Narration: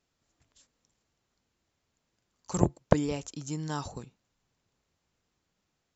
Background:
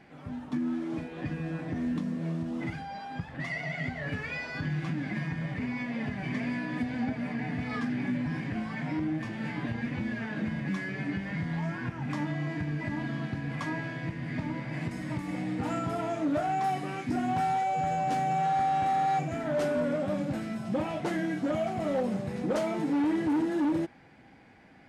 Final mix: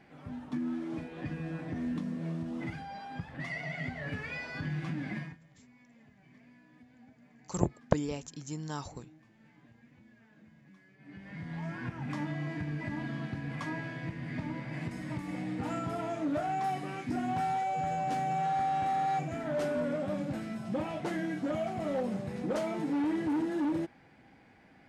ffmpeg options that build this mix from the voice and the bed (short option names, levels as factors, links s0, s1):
-filter_complex "[0:a]adelay=5000,volume=0.631[s0];[1:a]volume=9.44,afade=t=out:st=5.14:d=0.24:silence=0.0707946,afade=t=in:st=10.99:d=0.87:silence=0.0707946[s1];[s0][s1]amix=inputs=2:normalize=0"